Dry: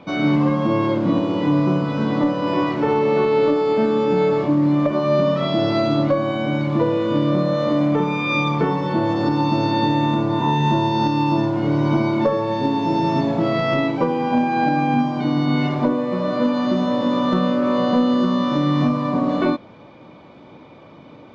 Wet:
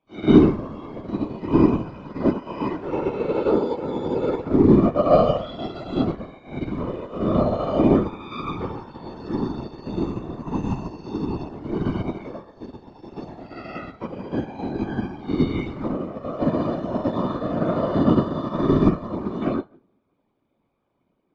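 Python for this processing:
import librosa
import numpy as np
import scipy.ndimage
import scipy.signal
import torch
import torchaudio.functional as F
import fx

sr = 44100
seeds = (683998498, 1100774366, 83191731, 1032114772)

y = fx.rev_fdn(x, sr, rt60_s=0.94, lf_ratio=1.3, hf_ratio=0.6, size_ms=69.0, drr_db=-4.0)
y = fx.whisperise(y, sr, seeds[0])
y = fx.dmg_buzz(y, sr, base_hz=100.0, harmonics=9, level_db=-20.0, tilt_db=-1, odd_only=False, at=(7.37, 7.95), fade=0.02)
y = fx.upward_expand(y, sr, threshold_db=-25.0, expansion=2.5)
y = y * 10.0 ** (-3.0 / 20.0)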